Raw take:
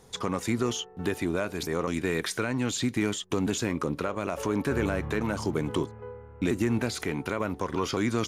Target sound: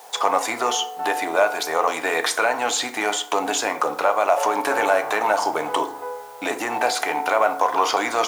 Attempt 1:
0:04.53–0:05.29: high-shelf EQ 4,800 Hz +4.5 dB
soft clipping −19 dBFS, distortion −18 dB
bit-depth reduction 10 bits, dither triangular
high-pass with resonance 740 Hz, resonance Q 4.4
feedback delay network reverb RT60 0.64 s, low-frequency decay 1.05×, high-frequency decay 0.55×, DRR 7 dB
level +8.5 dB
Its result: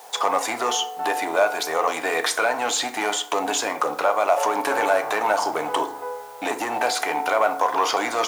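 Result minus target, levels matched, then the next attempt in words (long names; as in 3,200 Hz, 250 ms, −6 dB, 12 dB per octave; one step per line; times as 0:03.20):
soft clipping: distortion +18 dB
0:04.53–0:05.29: high-shelf EQ 4,800 Hz +4.5 dB
soft clipping −8.5 dBFS, distortion −37 dB
bit-depth reduction 10 bits, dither triangular
high-pass with resonance 740 Hz, resonance Q 4.4
feedback delay network reverb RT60 0.64 s, low-frequency decay 1.05×, high-frequency decay 0.55×, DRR 7 dB
level +8.5 dB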